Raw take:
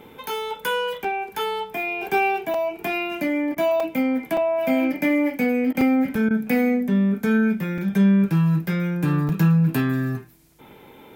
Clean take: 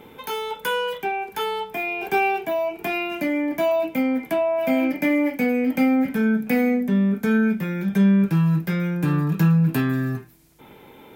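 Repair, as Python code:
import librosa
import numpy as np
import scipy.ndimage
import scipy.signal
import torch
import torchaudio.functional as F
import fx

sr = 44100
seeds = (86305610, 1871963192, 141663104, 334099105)

y = fx.fix_interpolate(x, sr, at_s=(1.04, 2.54, 3.8, 4.37, 5.81, 6.15, 7.78, 9.29), length_ms=3.7)
y = fx.fix_interpolate(y, sr, at_s=(3.55, 5.73, 6.29), length_ms=15.0)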